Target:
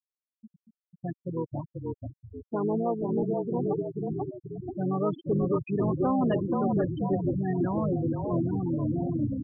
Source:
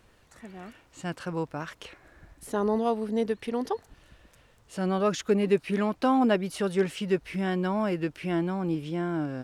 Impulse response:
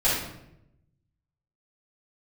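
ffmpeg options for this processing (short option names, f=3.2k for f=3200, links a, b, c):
-filter_complex "[0:a]asplit=8[a][b][c][d][e][f][g][h];[b]adelay=486,afreqshift=-32,volume=-3dB[i];[c]adelay=972,afreqshift=-64,volume=-8.5dB[j];[d]adelay=1458,afreqshift=-96,volume=-14dB[k];[e]adelay=1944,afreqshift=-128,volume=-19.5dB[l];[f]adelay=2430,afreqshift=-160,volume=-25.1dB[m];[g]adelay=2916,afreqshift=-192,volume=-30.6dB[n];[h]adelay=3402,afreqshift=-224,volume=-36.1dB[o];[a][i][j][k][l][m][n][o]amix=inputs=8:normalize=0,asplit=2[p][q];[q]asetrate=33038,aresample=44100,atempo=1.33484,volume=-6dB[r];[p][r]amix=inputs=2:normalize=0,aresample=8000,asoftclip=type=tanh:threshold=-20dB,aresample=44100,afftfilt=real='re*gte(hypot(re,im),0.0891)':imag='im*gte(hypot(re,im),0.0891)':win_size=1024:overlap=0.75"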